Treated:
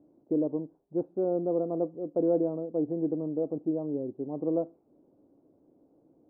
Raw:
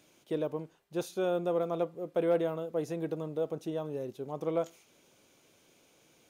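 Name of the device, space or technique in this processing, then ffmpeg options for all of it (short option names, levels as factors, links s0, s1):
under water: -af "lowpass=f=760:w=0.5412,lowpass=f=760:w=1.3066,equalizer=f=290:t=o:w=0.48:g=11.5"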